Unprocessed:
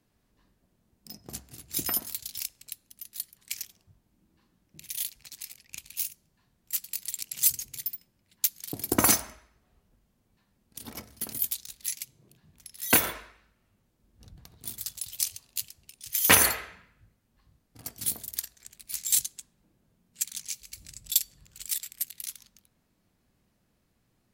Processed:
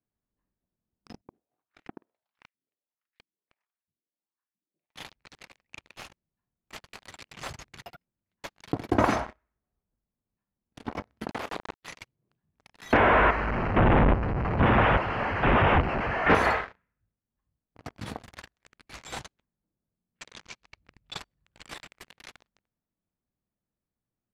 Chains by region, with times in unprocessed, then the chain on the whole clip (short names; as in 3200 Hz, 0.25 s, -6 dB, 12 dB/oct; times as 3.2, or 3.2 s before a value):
1.21–4.96 low shelf 270 Hz -7.5 dB + LFO band-pass saw up 1.5 Hz 220–2300 Hz
11.31–11.83 level-crossing sampler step -29 dBFS + HPF 250 Hz + doubler 35 ms -13 dB
12.93–16.35 delta modulation 16 kbps, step -23 dBFS + chopper 1.2 Hz, depth 60%, duty 45%
19.38–21.19 LPF 7600 Hz + low-pass opened by the level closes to 1900 Hz, open at -35 dBFS
whole clip: sample leveller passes 5; dynamic EQ 790 Hz, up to +4 dB, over -34 dBFS, Q 1; LPF 1800 Hz 12 dB/oct; gain -8 dB